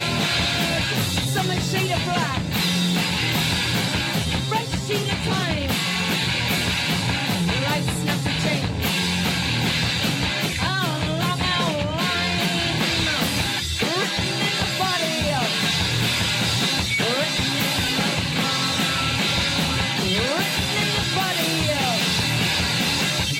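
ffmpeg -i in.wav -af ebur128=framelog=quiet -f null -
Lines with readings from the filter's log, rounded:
Integrated loudness:
  I:         -20.9 LUFS
  Threshold: -30.9 LUFS
Loudness range:
  LRA:         1.4 LU
  Threshold: -41.0 LUFS
  LRA low:   -21.6 LUFS
  LRA high:  -20.2 LUFS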